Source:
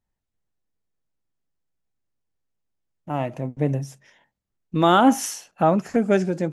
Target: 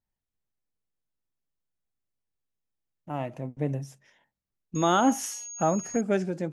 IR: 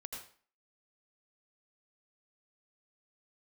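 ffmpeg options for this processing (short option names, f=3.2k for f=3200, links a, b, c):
-filter_complex "[0:a]asettb=1/sr,asplit=3[a][b][c];[a]atrim=end=4.754[d];[b]atrim=start=4.75:end=6.01,asetpts=PTS-STARTPTS,afade=t=in:d=0.004:c=qsin,afade=t=out:st=1.256:d=0.004:c=qsin,aeval=exprs='val(0)+0.0282*sin(2*PI*6600*n/s)':c=same[e];[c]atrim=start=6.006[f];[d][e]acrossfade=d=0.004:c1=hsin:c2=qsin[g];[g][f]acrossfade=d=0.004:c1=qsin:c2=hsin,volume=-6.5dB"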